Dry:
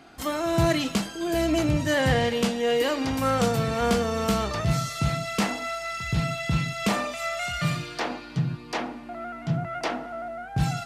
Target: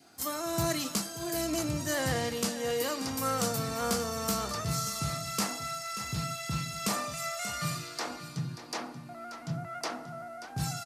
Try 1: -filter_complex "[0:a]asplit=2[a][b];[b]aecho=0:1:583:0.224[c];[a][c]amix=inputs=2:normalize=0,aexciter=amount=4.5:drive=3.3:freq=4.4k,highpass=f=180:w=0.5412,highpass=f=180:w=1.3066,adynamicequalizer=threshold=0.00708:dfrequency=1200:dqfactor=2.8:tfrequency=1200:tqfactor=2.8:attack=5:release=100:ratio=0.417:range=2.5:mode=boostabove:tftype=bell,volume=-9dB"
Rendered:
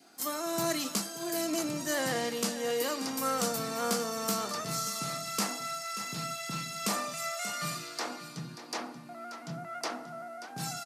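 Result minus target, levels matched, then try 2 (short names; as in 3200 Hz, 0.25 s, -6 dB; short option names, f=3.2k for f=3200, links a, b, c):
125 Hz band -7.5 dB
-filter_complex "[0:a]asplit=2[a][b];[b]aecho=0:1:583:0.224[c];[a][c]amix=inputs=2:normalize=0,aexciter=amount=4.5:drive=3.3:freq=4.4k,highpass=f=69:w=0.5412,highpass=f=69:w=1.3066,adynamicequalizer=threshold=0.00708:dfrequency=1200:dqfactor=2.8:tfrequency=1200:tqfactor=2.8:attack=5:release=100:ratio=0.417:range=2.5:mode=boostabove:tftype=bell,volume=-9dB"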